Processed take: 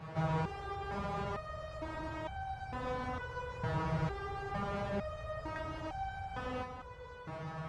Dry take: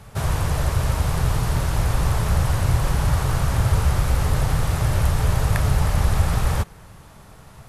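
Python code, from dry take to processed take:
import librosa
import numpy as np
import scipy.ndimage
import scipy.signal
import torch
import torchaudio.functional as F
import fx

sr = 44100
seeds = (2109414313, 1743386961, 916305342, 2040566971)

p1 = scipy.signal.sosfilt(scipy.signal.butter(2, 74.0, 'highpass', fs=sr, output='sos'), x)
p2 = fx.low_shelf(p1, sr, hz=180.0, db=-7.0)
p3 = fx.over_compress(p2, sr, threshold_db=-37.0, ratio=-1.0)
p4 = p2 + (p3 * 10.0 ** (-1.0 / 20.0))
p5 = fx.spacing_loss(p4, sr, db_at_10k=33)
p6 = p5 + fx.echo_alternate(p5, sr, ms=538, hz=1400.0, feedback_pct=77, wet_db=-10, dry=0)
p7 = fx.resonator_held(p6, sr, hz=2.2, low_hz=160.0, high_hz=780.0)
y = p7 * 10.0 ** (5.5 / 20.0)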